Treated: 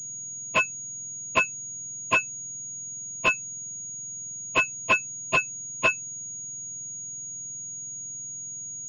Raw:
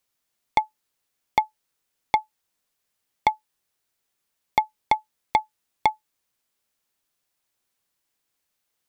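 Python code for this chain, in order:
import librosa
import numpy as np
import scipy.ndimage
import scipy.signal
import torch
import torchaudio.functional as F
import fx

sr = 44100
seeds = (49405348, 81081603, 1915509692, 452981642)

y = fx.octave_mirror(x, sr, pivot_hz=1500.0)
y = fx.fold_sine(y, sr, drive_db=6, ceiling_db=-11.0)
y = fx.pwm(y, sr, carrier_hz=6700.0)
y = y * librosa.db_to_amplitude(-1.5)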